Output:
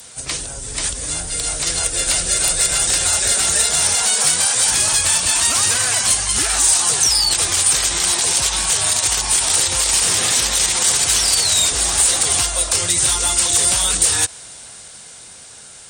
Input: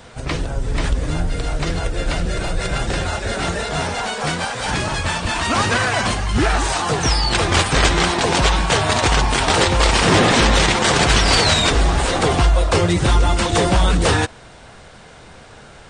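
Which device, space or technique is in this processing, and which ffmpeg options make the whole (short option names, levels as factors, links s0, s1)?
FM broadcast chain: -filter_complex "[0:a]highpass=f=65:p=1,dynaudnorm=f=290:g=11:m=2.99,acrossover=split=110|340|1100[s0][s1][s2][s3];[s0]acompressor=threshold=0.0891:ratio=4[s4];[s1]acompressor=threshold=0.02:ratio=4[s5];[s2]acompressor=threshold=0.0794:ratio=4[s6];[s3]acompressor=threshold=0.112:ratio=4[s7];[s4][s5][s6][s7]amix=inputs=4:normalize=0,aemphasis=mode=production:type=75fm,alimiter=limit=0.473:level=0:latency=1:release=69,asoftclip=type=hard:threshold=0.335,lowpass=f=15000:w=0.5412,lowpass=f=15000:w=1.3066,aemphasis=mode=production:type=75fm,volume=0.473"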